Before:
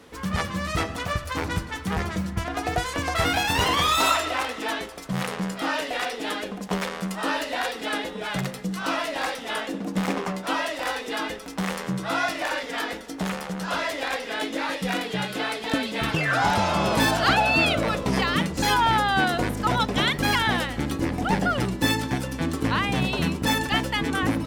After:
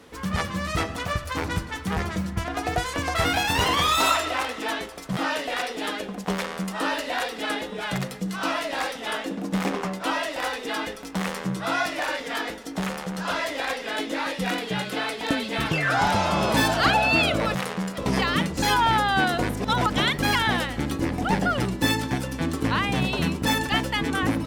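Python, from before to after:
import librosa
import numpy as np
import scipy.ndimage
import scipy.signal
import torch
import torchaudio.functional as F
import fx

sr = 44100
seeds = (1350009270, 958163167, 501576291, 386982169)

y = fx.edit(x, sr, fx.move(start_s=5.17, length_s=0.43, to_s=17.98),
    fx.reverse_span(start_s=19.6, length_s=0.33), tone=tone)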